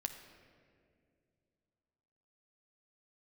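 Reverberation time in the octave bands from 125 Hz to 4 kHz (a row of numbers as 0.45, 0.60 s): 3.2, 3.0, 2.8, 1.9, 1.8, 1.3 s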